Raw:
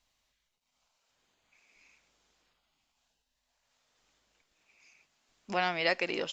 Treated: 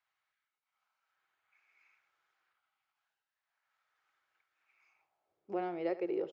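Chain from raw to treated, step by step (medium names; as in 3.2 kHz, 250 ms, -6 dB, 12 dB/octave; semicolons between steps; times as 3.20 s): peaking EQ 100 Hz +12.5 dB 1.4 oct; small resonant body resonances 340/790/1300/2200 Hz, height 7 dB; band-pass sweep 1.5 kHz -> 410 Hz, 4.76–5.46 s; peaking EQ 250 Hz -12 dB 0.34 oct; delay 73 ms -15.5 dB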